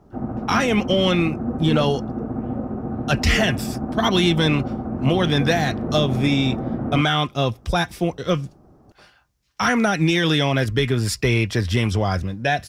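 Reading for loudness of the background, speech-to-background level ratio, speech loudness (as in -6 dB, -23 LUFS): -27.5 LUFS, 6.5 dB, -21.0 LUFS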